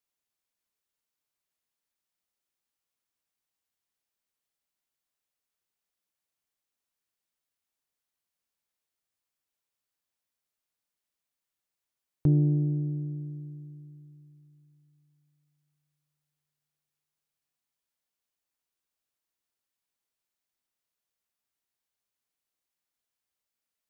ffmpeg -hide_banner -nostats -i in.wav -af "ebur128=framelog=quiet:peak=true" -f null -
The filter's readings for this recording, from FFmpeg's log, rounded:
Integrated loudness:
  I:         -27.9 LUFS
  Threshold: -41.4 LUFS
Loudness range:
  LRA:        16.5 LU
  Threshold: -53.7 LUFS
  LRA low:   -47.8 LUFS
  LRA high:  -31.2 LUFS
True peak:
  Peak:      -14.7 dBFS